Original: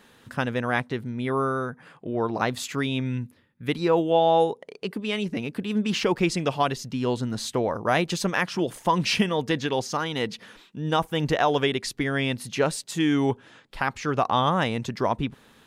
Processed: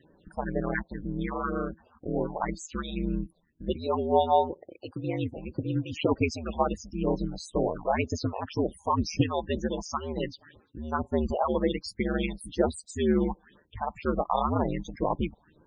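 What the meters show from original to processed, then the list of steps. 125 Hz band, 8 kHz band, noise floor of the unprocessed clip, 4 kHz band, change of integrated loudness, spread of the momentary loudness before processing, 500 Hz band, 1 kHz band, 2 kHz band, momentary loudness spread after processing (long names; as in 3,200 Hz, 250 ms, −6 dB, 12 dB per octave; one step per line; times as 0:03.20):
−4.0 dB, −8.0 dB, −56 dBFS, −11.0 dB, −4.0 dB, 10 LU, −3.5 dB, −4.0 dB, −10.0 dB, 10 LU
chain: all-pass phaser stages 4, 2 Hz, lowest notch 270–3,500 Hz
ring modulation 79 Hz
spectral peaks only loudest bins 32
level +1 dB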